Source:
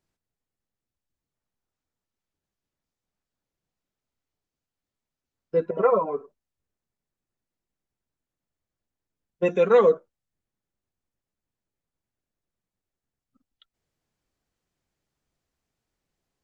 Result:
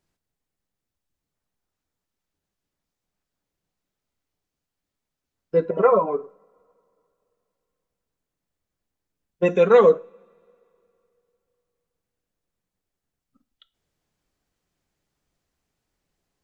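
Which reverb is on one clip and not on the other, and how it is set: two-slope reverb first 0.37 s, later 2.9 s, from -27 dB, DRR 15 dB; trim +3.5 dB

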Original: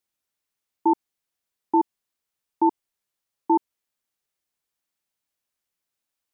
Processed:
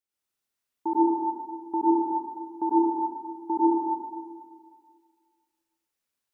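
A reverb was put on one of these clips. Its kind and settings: plate-style reverb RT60 1.9 s, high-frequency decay 0.85×, pre-delay 85 ms, DRR -8.5 dB; trim -9 dB

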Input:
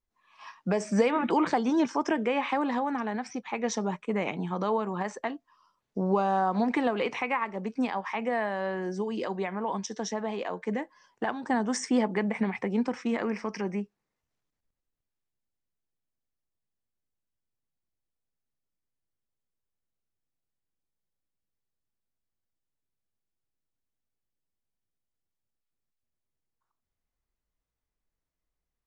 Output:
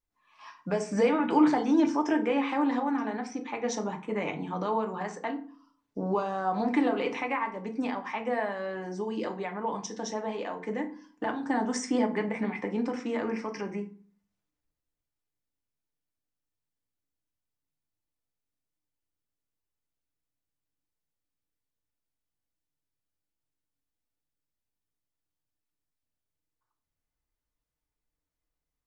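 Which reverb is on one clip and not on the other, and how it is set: FDN reverb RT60 0.43 s, low-frequency decay 1.45×, high-frequency decay 0.65×, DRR 3.5 dB; trim -3 dB

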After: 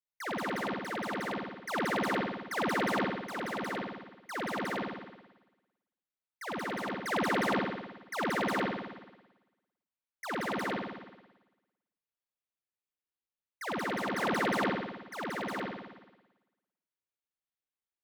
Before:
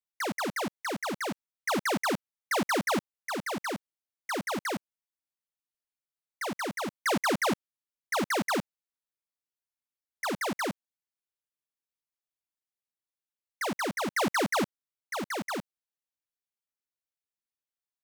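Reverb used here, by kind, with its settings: spring tank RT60 1.1 s, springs 55 ms, chirp 35 ms, DRR -7 dB; trim -9.5 dB

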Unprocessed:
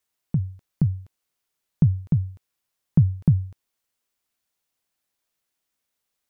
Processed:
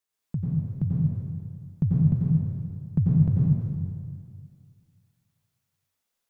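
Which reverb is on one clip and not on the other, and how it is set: plate-style reverb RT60 2.1 s, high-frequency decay 0.75×, pre-delay 80 ms, DRR -6 dB; trim -7 dB

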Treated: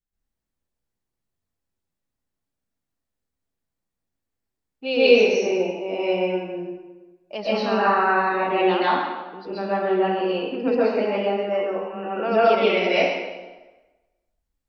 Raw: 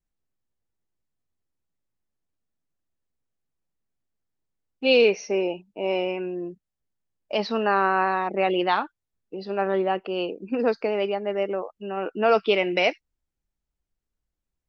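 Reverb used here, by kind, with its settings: plate-style reverb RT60 1.2 s, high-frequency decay 0.8×, pre-delay 110 ms, DRR -9.5 dB; trim -7 dB

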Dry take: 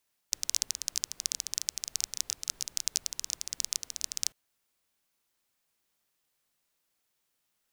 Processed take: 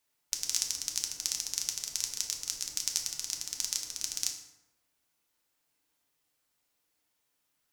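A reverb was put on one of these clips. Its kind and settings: FDN reverb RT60 0.97 s, low-frequency decay 1.05×, high-frequency decay 0.6×, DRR 1.5 dB; trim -1.5 dB

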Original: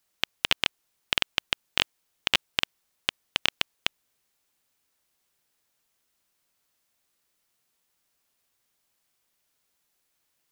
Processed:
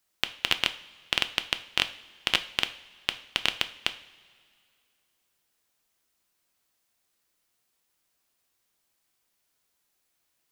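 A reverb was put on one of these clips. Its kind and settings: two-slope reverb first 0.43 s, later 2.3 s, from -17 dB, DRR 9.5 dB; trim -1 dB

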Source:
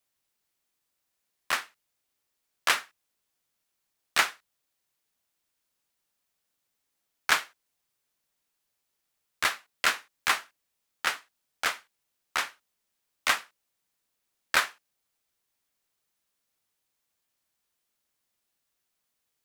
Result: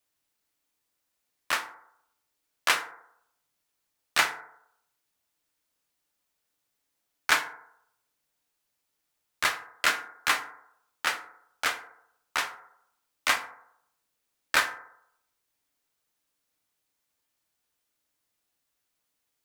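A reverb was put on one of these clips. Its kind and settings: FDN reverb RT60 0.74 s, low-frequency decay 0.75×, high-frequency decay 0.3×, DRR 6.5 dB

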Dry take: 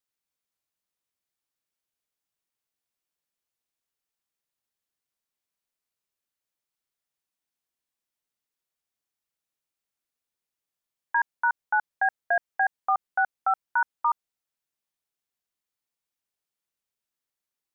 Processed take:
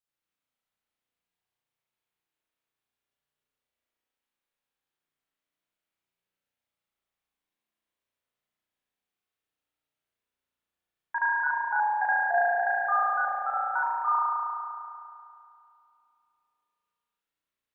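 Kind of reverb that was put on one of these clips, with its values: spring tank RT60 2.6 s, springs 34 ms, chirp 30 ms, DRR -9 dB; trim -6 dB

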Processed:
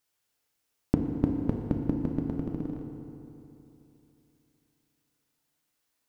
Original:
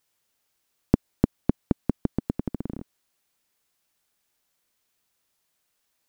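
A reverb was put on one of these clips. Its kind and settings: FDN reverb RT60 3.1 s, high-frequency decay 0.65×, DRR 1.5 dB; trim -5.5 dB

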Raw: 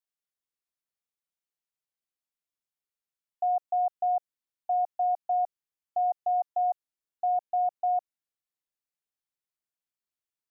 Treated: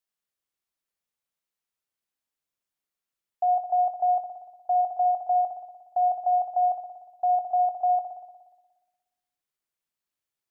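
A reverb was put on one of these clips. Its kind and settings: spring tank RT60 1.2 s, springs 59 ms, chirp 75 ms, DRR 4.5 dB; trim +3 dB

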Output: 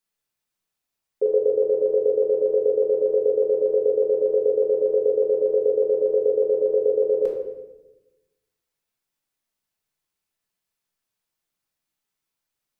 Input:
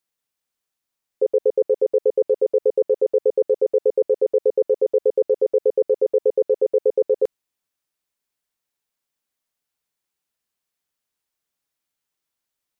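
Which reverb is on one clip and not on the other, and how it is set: simulated room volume 440 m³, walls mixed, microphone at 1.5 m; trim -3.5 dB

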